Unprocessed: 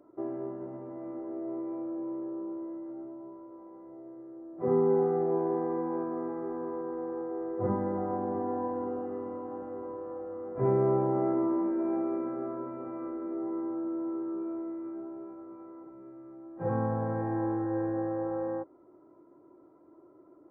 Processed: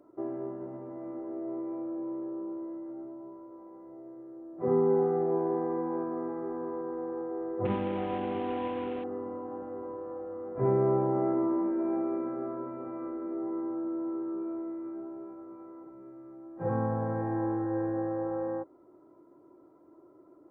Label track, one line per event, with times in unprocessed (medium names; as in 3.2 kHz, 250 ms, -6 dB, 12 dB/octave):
7.650000	9.040000	CVSD coder 16 kbps